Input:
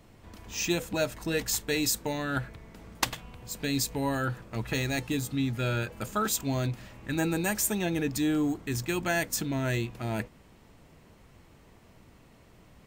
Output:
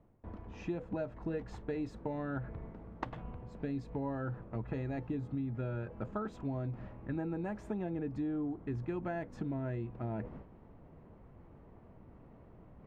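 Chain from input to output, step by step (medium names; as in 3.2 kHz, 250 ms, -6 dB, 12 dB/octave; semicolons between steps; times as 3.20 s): gate with hold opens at -43 dBFS; reverse; upward compressor, threshold -34 dBFS; reverse; low-pass 1 kHz 12 dB/octave; compression, threshold -32 dBFS, peak gain reduction 8.5 dB; trim -1.5 dB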